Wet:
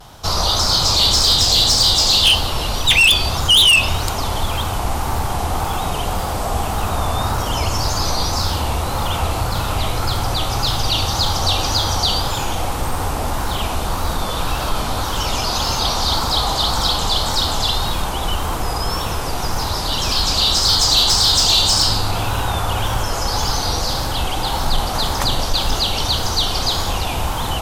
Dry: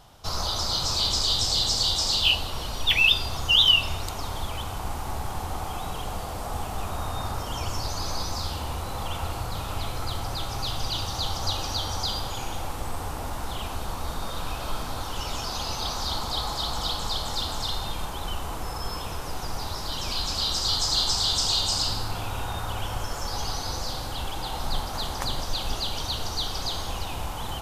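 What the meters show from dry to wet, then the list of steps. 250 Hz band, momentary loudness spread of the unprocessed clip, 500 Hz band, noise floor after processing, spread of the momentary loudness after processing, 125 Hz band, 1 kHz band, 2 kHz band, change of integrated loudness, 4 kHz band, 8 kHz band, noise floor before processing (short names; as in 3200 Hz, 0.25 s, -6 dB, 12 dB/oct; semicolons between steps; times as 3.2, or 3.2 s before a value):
+11.0 dB, 12 LU, +11.0 dB, -22 dBFS, 11 LU, +11.0 dB, +11.0 dB, +9.0 dB, +10.0 dB, +9.5 dB, +11.0 dB, -33 dBFS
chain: vibrato 1.8 Hz 82 cents; added harmonics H 5 -11 dB, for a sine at -8 dBFS; gain +4 dB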